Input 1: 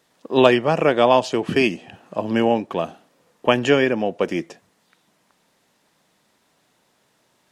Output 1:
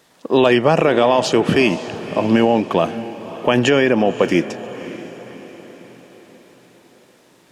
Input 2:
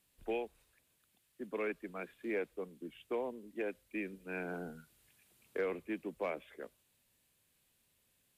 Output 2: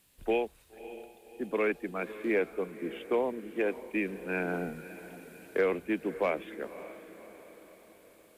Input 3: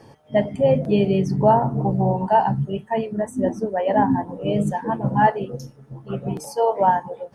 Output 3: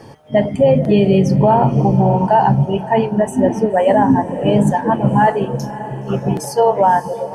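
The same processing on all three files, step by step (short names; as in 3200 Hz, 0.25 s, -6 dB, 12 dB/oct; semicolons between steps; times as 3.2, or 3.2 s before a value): limiter -12.5 dBFS; on a send: diffused feedback echo 0.567 s, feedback 50%, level -14.5 dB; on the sum: gain +8.5 dB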